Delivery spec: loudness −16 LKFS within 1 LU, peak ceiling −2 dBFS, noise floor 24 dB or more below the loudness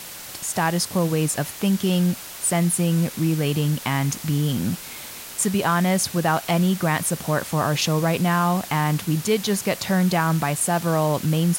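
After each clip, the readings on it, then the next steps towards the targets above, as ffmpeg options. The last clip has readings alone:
background noise floor −37 dBFS; target noise floor −46 dBFS; integrated loudness −22.0 LKFS; sample peak −7.0 dBFS; target loudness −16.0 LKFS
→ -af "afftdn=noise_reduction=9:noise_floor=-37"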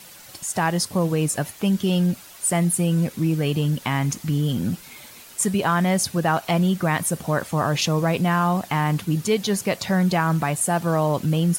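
background noise floor −44 dBFS; target noise floor −46 dBFS
→ -af "afftdn=noise_reduction=6:noise_floor=-44"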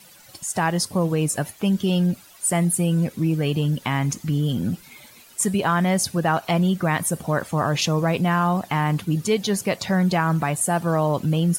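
background noise floor −49 dBFS; integrated loudness −22.5 LKFS; sample peak −7.5 dBFS; target loudness −16.0 LKFS
→ -af "volume=6.5dB,alimiter=limit=-2dB:level=0:latency=1"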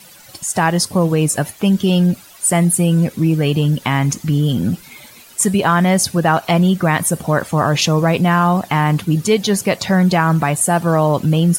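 integrated loudness −16.0 LKFS; sample peak −2.0 dBFS; background noise floor −42 dBFS

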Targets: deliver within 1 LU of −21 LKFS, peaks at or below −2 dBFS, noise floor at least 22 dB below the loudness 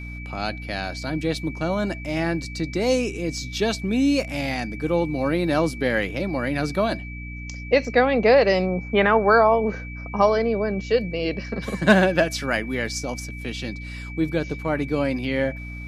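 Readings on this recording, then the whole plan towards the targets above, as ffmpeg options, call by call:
mains hum 60 Hz; hum harmonics up to 300 Hz; level of the hum −33 dBFS; interfering tone 2,300 Hz; level of the tone −38 dBFS; integrated loudness −23.0 LKFS; sample peak −2.0 dBFS; target loudness −21.0 LKFS
→ -af "bandreject=frequency=60:width_type=h:width=4,bandreject=frequency=120:width_type=h:width=4,bandreject=frequency=180:width_type=h:width=4,bandreject=frequency=240:width_type=h:width=4,bandreject=frequency=300:width_type=h:width=4"
-af "bandreject=frequency=2300:width=30"
-af "volume=2dB,alimiter=limit=-2dB:level=0:latency=1"

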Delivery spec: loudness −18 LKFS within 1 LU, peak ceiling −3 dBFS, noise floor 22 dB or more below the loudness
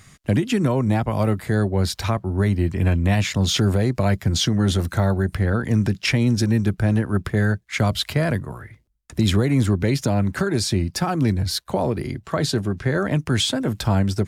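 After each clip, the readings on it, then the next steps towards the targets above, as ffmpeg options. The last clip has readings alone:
integrated loudness −21.5 LKFS; sample peak −8.5 dBFS; target loudness −18.0 LKFS
→ -af "volume=3.5dB"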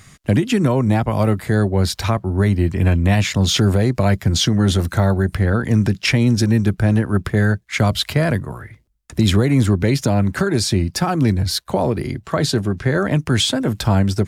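integrated loudness −18.0 LKFS; sample peak −5.0 dBFS; background noise floor −52 dBFS

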